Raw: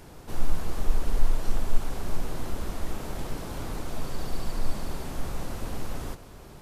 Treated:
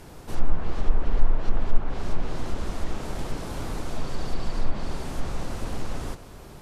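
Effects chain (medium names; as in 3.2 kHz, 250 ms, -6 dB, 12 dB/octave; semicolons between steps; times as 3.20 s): low-pass that closes with the level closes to 1.9 kHz, closed at -13.5 dBFS; trim +2.5 dB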